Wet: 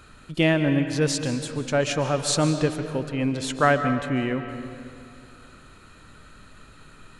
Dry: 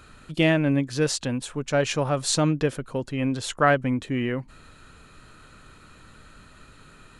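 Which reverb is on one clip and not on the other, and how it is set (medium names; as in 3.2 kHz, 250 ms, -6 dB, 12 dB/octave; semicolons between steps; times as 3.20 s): algorithmic reverb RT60 2.5 s, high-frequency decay 0.65×, pre-delay 100 ms, DRR 8 dB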